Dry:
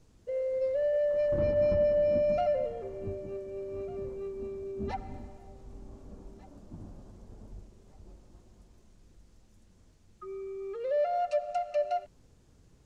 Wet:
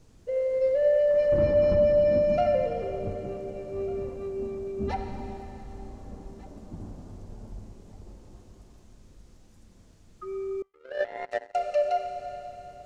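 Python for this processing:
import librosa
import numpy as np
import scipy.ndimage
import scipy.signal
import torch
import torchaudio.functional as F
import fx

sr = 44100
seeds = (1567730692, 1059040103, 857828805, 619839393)

y = fx.rev_schroeder(x, sr, rt60_s=3.6, comb_ms=28, drr_db=4.5)
y = fx.power_curve(y, sr, exponent=3.0, at=(10.62, 11.55))
y = y * 10.0 ** (4.5 / 20.0)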